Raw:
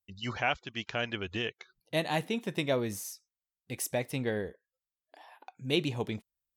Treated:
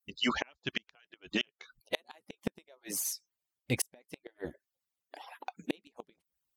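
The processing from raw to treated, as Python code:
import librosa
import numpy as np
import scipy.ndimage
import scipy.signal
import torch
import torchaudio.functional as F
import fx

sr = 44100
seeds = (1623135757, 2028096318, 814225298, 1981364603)

y = fx.hpss_only(x, sr, part='percussive')
y = fx.gate_flip(y, sr, shuts_db=-25.0, range_db=-37)
y = F.gain(torch.from_numpy(y), 8.5).numpy()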